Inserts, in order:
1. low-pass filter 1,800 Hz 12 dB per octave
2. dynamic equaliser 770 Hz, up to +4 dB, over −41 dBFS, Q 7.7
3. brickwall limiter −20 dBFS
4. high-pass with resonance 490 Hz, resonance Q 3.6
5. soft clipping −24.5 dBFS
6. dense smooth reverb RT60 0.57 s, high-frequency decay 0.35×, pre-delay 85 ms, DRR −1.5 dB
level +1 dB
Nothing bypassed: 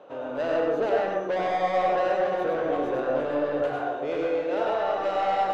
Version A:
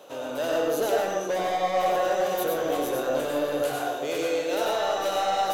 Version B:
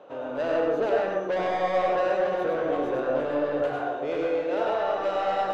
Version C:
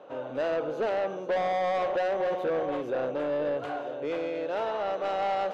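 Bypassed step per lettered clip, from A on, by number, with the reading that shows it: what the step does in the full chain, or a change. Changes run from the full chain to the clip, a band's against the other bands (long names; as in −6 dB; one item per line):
1, 4 kHz band +8.5 dB
2, 1 kHz band −2.0 dB
6, change in crest factor −6.0 dB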